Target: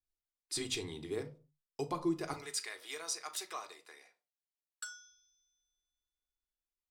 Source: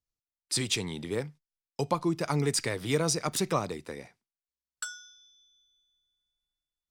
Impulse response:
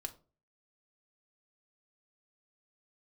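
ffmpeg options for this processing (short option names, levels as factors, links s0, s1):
-filter_complex "[0:a]asettb=1/sr,asplit=3[s0][s1][s2];[s0]atrim=end=2.334[s3];[s1]atrim=start=2.33:end=4.83,asetpts=PTS-STARTPTS,afade=t=in:d=0.004:c=qsin,afade=t=out:st=2.496:d=0.004:c=qsin,highpass=1000[s4];[s2]atrim=start=4.826[s5];[s3][s4]acrossfade=d=0.004:c1=hsin:c2=qsin[s6];[s6][s5]acrossfade=d=0.004:c1=qsin:c2=hsin[s7];[1:a]atrim=start_sample=2205,afade=t=out:st=0.33:d=0.01,atrim=end_sample=14994[s8];[s7][s8]afir=irnorm=-1:irlink=0,volume=0.531"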